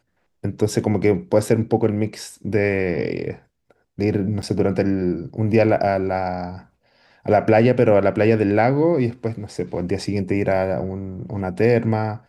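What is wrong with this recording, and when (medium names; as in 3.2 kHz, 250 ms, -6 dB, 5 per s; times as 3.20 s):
4.42–4.43 s: dropout 8.7 ms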